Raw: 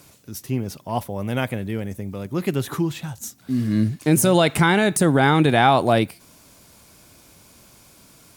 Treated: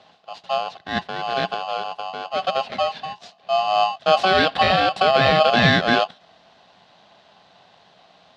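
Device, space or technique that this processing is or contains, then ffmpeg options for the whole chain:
ring modulator pedal into a guitar cabinet: -filter_complex "[0:a]aeval=exprs='val(0)*sgn(sin(2*PI*940*n/s))':channel_layout=same,highpass=95,equalizer=frequency=180:width_type=q:width=4:gain=9,equalizer=frequency=330:width_type=q:width=4:gain=-6,equalizer=frequency=670:width_type=q:width=4:gain=7,equalizer=frequency=1200:width_type=q:width=4:gain=-7,equalizer=frequency=2300:width_type=q:width=4:gain=-5,equalizer=frequency=3900:width_type=q:width=4:gain=5,lowpass=frequency=4000:width=0.5412,lowpass=frequency=4000:width=1.3066,asettb=1/sr,asplit=3[link_01][link_02][link_03];[link_01]atrim=end=4.254[link_04];[link_02]atrim=start=4.25:end=5.5,asetpts=PTS-STARTPTS,afade=type=in:duration=0.004:curve=qsin,afade=type=out:start_time=1.246:duration=0.004:curve=qsin,bandreject=frequency=6400:width=7.8[link_05];[link_03]atrim=start=5.496[link_06];[link_04][link_05]acrossfade=duration=0.004:curve1=hsin:curve2=qsin[link_07];[link_07][link_06]acrossfade=duration=0.004:curve1=qsin:curve2=hsin"

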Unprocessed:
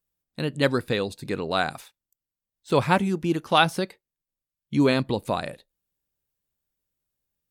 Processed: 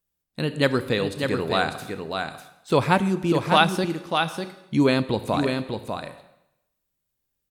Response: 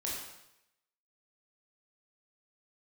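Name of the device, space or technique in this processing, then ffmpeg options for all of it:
compressed reverb return: -filter_complex "[0:a]aecho=1:1:597:0.501,asplit=2[link_01][link_02];[1:a]atrim=start_sample=2205[link_03];[link_02][link_03]afir=irnorm=-1:irlink=0,acompressor=threshold=-21dB:ratio=4,volume=-9.5dB[link_04];[link_01][link_04]amix=inputs=2:normalize=0"

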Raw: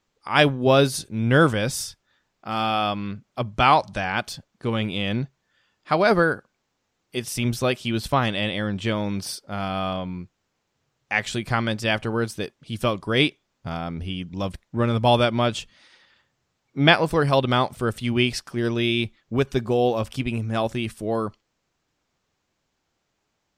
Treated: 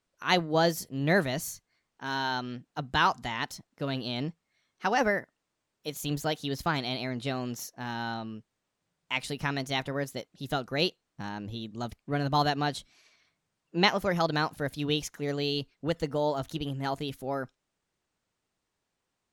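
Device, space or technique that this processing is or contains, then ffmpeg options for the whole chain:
nightcore: -af "asetrate=53802,aresample=44100,volume=-7.5dB"

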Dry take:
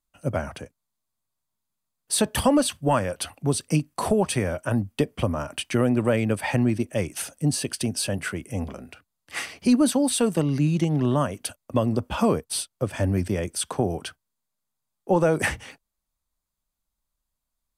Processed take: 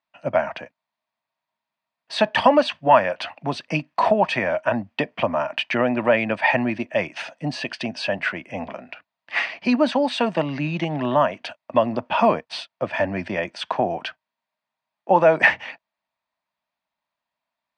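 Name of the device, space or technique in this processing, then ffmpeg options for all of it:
kitchen radio: -af "highpass=230,equalizer=frequency=290:width_type=q:width=4:gain=-3,equalizer=frequency=420:width_type=q:width=4:gain=-9,equalizer=frequency=650:width_type=q:width=4:gain=9,equalizer=frequency=940:width_type=q:width=4:gain=8,equalizer=frequency=1800:width_type=q:width=4:gain=8,equalizer=frequency=2500:width_type=q:width=4:gain=7,lowpass=frequency=4400:width=0.5412,lowpass=frequency=4400:width=1.3066,volume=2.5dB"

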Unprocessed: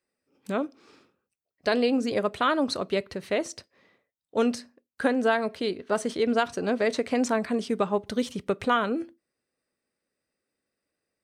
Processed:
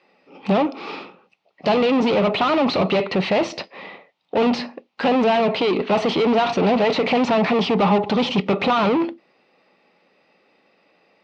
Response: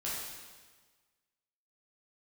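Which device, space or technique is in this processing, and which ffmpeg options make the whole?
overdrive pedal into a guitar cabinet: -filter_complex "[0:a]asplit=2[link_01][link_02];[link_02]highpass=frequency=720:poles=1,volume=35dB,asoftclip=type=tanh:threshold=-12dB[link_03];[link_01][link_03]amix=inputs=2:normalize=0,lowpass=frequency=2500:poles=1,volume=-6dB,highpass=100,equalizer=frequency=180:width_type=q:width=4:gain=9,equalizer=frequency=820:width_type=q:width=4:gain=7,equalizer=frequency=1600:width_type=q:width=4:gain=-10,equalizer=frequency=2600:width_type=q:width=4:gain=4,lowpass=frequency=4500:width=0.5412,lowpass=frequency=4500:width=1.3066"

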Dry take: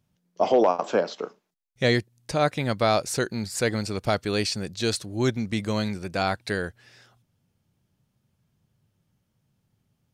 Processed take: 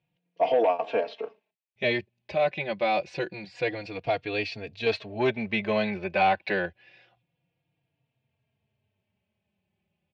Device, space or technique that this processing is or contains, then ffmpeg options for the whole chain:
barber-pole flanger into a guitar amplifier: -filter_complex "[0:a]asettb=1/sr,asplit=3[link_01][link_02][link_03];[link_01]atrim=end=4.864[link_04];[link_02]atrim=start=4.86:end=6.66,asetpts=PTS-STARTPTS,afade=type=in:duration=0.004:curve=qsin,afade=type=out:start_time=1.796:duration=0.004:curve=qsin,equalizer=frequency=1000:width=0.35:gain=9[link_05];[link_03]atrim=start=6.656[link_06];[link_04][link_05]acrossfade=duration=0.004:curve1=hsin:curve2=qsin[link_07];[link_07][link_06]acrossfade=duration=0.004:curve1=qsin:curve2=hsin,asplit=2[link_08][link_09];[link_09]adelay=3.7,afreqshift=-0.27[link_10];[link_08][link_10]amix=inputs=2:normalize=1,asoftclip=type=tanh:threshold=-15dB,highpass=94,equalizer=frequency=110:width_type=q:width=4:gain=-7,equalizer=frequency=160:width_type=q:width=4:gain=-3,equalizer=frequency=250:width_type=q:width=4:gain=-8,equalizer=frequency=670:width_type=q:width=4:gain=5,equalizer=frequency=1300:width_type=q:width=4:gain=-10,equalizer=frequency=2500:width_type=q:width=4:gain=10,lowpass=frequency=3600:width=0.5412,lowpass=frequency=3600:width=1.3066"

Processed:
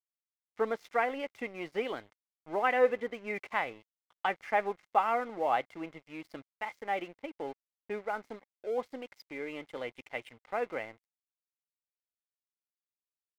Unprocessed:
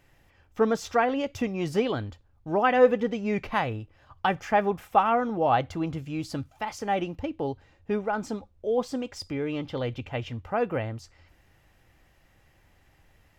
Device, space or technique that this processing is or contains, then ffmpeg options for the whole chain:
pocket radio on a weak battery: -af "highpass=360,lowpass=3600,aeval=exprs='sgn(val(0))*max(abs(val(0))-0.00447,0)':channel_layout=same,equalizer=frequency=2100:width_type=o:width=0.21:gain=11,volume=-5.5dB"

